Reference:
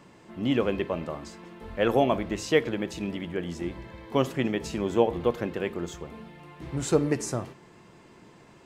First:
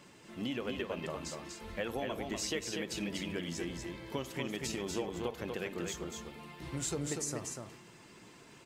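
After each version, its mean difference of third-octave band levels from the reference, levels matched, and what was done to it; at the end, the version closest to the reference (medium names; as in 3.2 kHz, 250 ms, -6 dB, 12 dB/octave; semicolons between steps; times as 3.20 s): 8.5 dB: coarse spectral quantiser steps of 15 dB; treble shelf 2.3 kHz +11.5 dB; compression 10:1, threshold -28 dBFS, peak gain reduction 14.5 dB; on a send: delay 242 ms -4.5 dB; on the sum: trim -5.5 dB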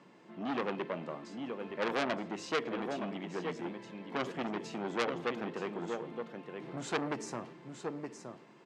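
6.0 dB: high-pass 160 Hz 24 dB/octave; distance through air 78 m; delay 920 ms -8.5 dB; transformer saturation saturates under 2.8 kHz; trim -5 dB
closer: second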